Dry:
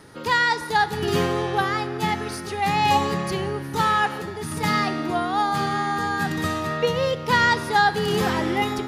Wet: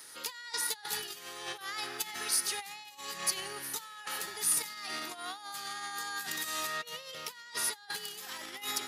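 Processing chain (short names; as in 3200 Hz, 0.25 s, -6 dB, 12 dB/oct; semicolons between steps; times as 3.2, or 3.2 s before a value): negative-ratio compressor -27 dBFS, ratio -0.5; differentiator; gain +3.5 dB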